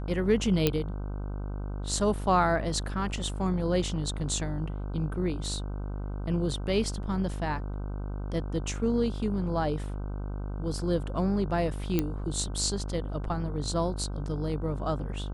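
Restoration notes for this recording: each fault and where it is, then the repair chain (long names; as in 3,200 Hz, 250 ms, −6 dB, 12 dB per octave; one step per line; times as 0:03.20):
mains buzz 50 Hz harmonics 31 −34 dBFS
0:00.67: click −9 dBFS
0:11.99: click −12 dBFS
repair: click removal
hum removal 50 Hz, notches 31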